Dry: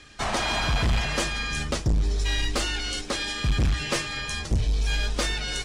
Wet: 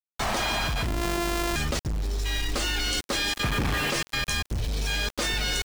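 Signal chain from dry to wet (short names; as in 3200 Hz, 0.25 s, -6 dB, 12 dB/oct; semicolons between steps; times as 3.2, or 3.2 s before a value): 0.87–1.56 sample sorter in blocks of 128 samples; 4.68–5.34 HPF 69 Hz 12 dB/oct; level quantiser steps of 16 dB; 3.43–3.9 overdrive pedal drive 38 dB, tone 1100 Hz, clips at -20 dBFS; sample gate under -38.5 dBFS; gain +5.5 dB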